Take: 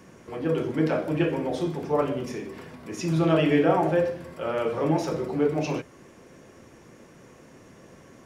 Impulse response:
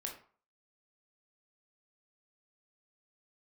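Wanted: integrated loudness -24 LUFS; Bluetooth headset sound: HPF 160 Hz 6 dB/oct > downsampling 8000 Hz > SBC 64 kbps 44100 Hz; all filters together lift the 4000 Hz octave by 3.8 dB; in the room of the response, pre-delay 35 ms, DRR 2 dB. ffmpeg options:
-filter_complex "[0:a]equalizer=f=4k:t=o:g=5.5,asplit=2[a][b];[1:a]atrim=start_sample=2205,adelay=35[c];[b][c]afir=irnorm=-1:irlink=0,volume=-1dB[d];[a][d]amix=inputs=2:normalize=0,highpass=f=160:p=1,aresample=8000,aresample=44100,volume=0.5dB" -ar 44100 -c:a sbc -b:a 64k

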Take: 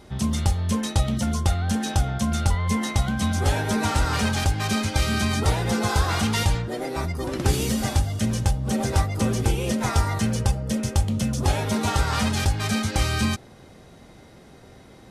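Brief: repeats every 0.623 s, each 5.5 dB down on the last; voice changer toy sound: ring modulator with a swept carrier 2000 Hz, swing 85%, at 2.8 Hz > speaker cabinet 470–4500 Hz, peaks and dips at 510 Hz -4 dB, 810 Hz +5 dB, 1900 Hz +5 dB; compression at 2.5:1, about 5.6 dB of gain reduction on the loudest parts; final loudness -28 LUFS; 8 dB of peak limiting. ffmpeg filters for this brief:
-af "acompressor=threshold=-24dB:ratio=2.5,alimiter=limit=-18.5dB:level=0:latency=1,aecho=1:1:623|1246|1869|2492|3115|3738|4361:0.531|0.281|0.149|0.079|0.0419|0.0222|0.0118,aeval=exprs='val(0)*sin(2*PI*2000*n/s+2000*0.85/2.8*sin(2*PI*2.8*n/s))':c=same,highpass=470,equalizer=f=510:t=q:w=4:g=-4,equalizer=f=810:t=q:w=4:g=5,equalizer=f=1.9k:t=q:w=4:g=5,lowpass=f=4.5k:w=0.5412,lowpass=f=4.5k:w=1.3066,volume=-0.5dB"

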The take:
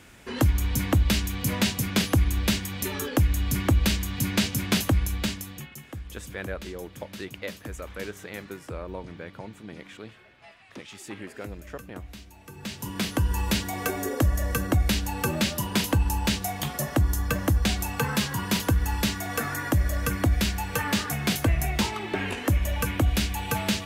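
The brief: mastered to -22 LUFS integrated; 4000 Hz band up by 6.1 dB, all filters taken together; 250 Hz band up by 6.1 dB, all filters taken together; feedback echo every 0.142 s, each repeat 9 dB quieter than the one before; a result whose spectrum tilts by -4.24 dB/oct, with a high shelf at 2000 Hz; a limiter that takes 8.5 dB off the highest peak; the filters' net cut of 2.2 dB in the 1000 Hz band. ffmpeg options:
-af "equalizer=f=250:t=o:g=8,equalizer=f=1k:t=o:g=-4.5,highshelf=f=2k:g=3.5,equalizer=f=4k:t=o:g=4.5,alimiter=limit=-14dB:level=0:latency=1,aecho=1:1:142|284|426|568:0.355|0.124|0.0435|0.0152,volume=3.5dB"

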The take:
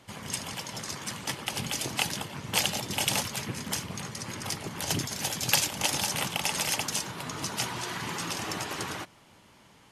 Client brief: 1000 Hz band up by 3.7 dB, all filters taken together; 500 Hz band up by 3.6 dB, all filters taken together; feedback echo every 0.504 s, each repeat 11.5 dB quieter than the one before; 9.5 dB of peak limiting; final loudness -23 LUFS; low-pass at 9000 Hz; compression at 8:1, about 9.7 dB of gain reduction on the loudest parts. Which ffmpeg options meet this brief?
-af "lowpass=9k,equalizer=f=500:t=o:g=3.5,equalizer=f=1k:t=o:g=3.5,acompressor=threshold=-31dB:ratio=8,alimiter=level_in=0.5dB:limit=-24dB:level=0:latency=1,volume=-0.5dB,aecho=1:1:504|1008|1512:0.266|0.0718|0.0194,volume=13dB"

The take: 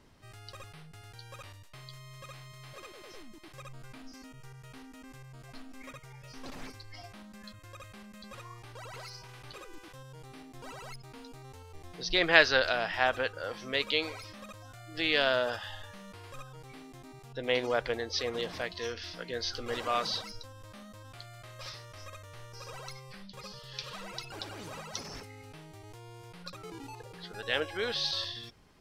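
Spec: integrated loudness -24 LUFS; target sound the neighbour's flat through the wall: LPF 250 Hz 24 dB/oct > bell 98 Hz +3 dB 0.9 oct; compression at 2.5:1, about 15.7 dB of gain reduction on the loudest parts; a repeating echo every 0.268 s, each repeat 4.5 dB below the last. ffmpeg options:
-af "acompressor=threshold=-38dB:ratio=2.5,lowpass=f=250:w=0.5412,lowpass=f=250:w=1.3066,equalizer=f=98:t=o:w=0.9:g=3,aecho=1:1:268|536|804|1072|1340|1608|1876|2144|2412:0.596|0.357|0.214|0.129|0.0772|0.0463|0.0278|0.0167|0.01,volume=27dB"

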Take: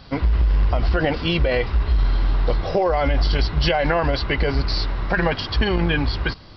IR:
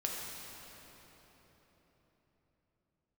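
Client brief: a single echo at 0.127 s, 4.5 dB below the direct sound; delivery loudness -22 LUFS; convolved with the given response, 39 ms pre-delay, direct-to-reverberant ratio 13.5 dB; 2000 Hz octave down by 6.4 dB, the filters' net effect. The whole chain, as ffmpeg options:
-filter_complex "[0:a]equalizer=f=2k:t=o:g=-8.5,aecho=1:1:127:0.596,asplit=2[a][b];[1:a]atrim=start_sample=2205,adelay=39[c];[b][c]afir=irnorm=-1:irlink=0,volume=-17dB[d];[a][d]amix=inputs=2:normalize=0,volume=-1.5dB"

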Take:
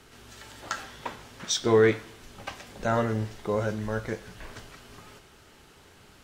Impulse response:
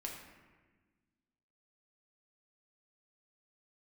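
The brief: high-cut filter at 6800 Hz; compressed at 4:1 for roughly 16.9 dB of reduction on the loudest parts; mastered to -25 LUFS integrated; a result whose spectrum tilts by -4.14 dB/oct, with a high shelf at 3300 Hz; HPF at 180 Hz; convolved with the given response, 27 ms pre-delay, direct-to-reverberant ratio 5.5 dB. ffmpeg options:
-filter_complex "[0:a]highpass=180,lowpass=6.8k,highshelf=f=3.3k:g=-5.5,acompressor=threshold=-37dB:ratio=4,asplit=2[a][b];[1:a]atrim=start_sample=2205,adelay=27[c];[b][c]afir=irnorm=-1:irlink=0,volume=-4.5dB[d];[a][d]amix=inputs=2:normalize=0,volume=15.5dB"

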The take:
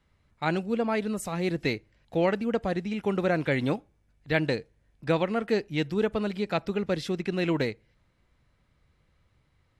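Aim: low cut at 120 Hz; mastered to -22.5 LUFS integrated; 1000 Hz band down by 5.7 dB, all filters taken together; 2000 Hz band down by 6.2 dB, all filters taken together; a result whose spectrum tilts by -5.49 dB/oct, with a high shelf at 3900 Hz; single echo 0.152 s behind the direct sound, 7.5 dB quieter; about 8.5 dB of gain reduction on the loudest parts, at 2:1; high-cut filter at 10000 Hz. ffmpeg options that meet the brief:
-af "highpass=120,lowpass=10k,equalizer=f=1k:t=o:g=-7,equalizer=f=2k:t=o:g=-8,highshelf=f=3.9k:g=8.5,acompressor=threshold=-38dB:ratio=2,aecho=1:1:152:0.422,volume=14.5dB"

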